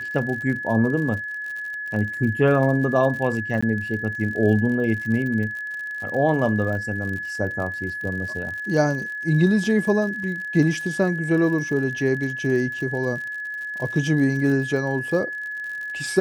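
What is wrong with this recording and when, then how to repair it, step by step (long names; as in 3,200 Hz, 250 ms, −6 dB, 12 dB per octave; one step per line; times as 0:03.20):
surface crackle 60 per second −31 dBFS
whistle 1,700 Hz −28 dBFS
0:03.61–0:03.62: drop-out 15 ms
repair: click removal
notch filter 1,700 Hz, Q 30
repair the gap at 0:03.61, 15 ms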